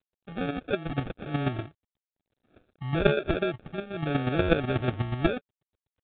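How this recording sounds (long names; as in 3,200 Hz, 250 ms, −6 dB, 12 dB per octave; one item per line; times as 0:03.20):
chopped level 8.2 Hz, depth 60%, duty 15%
phaser sweep stages 8, 0.73 Hz, lowest notch 580–3,000 Hz
aliases and images of a low sample rate 1,000 Hz, jitter 0%
G.726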